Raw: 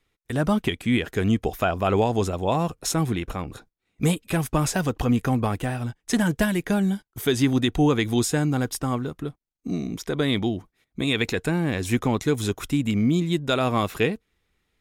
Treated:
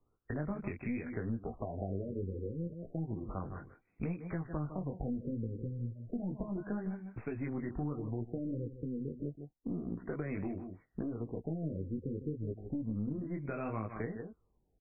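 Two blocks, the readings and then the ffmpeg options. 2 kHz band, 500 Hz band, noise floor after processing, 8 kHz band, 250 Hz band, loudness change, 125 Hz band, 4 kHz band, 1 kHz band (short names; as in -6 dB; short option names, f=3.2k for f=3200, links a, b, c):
-21.0 dB, -16.0 dB, -77 dBFS, under -40 dB, -14.5 dB, -15.5 dB, -13.5 dB, under -40 dB, -20.0 dB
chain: -filter_complex "[0:a]flanger=delay=17:depth=4.4:speed=0.71,aexciter=amount=3.8:drive=7.7:freq=12k,bandreject=f=850:w=17,aecho=1:1:153:0.211,acrossover=split=250|3000[a][b][c];[b]acompressor=threshold=-27dB:ratio=6[d];[a][d][c]amix=inputs=3:normalize=0,equalizer=f=2.3k:w=1.5:g=-2.5,acompressor=threshold=-38dB:ratio=4,aeval=exprs='(tanh(25.1*val(0)+0.45)-tanh(0.45))/25.1':c=same,afftfilt=real='re*lt(b*sr/1024,520*pow(2700/520,0.5+0.5*sin(2*PI*0.31*pts/sr)))':imag='im*lt(b*sr/1024,520*pow(2700/520,0.5+0.5*sin(2*PI*0.31*pts/sr)))':win_size=1024:overlap=0.75,volume=3dB"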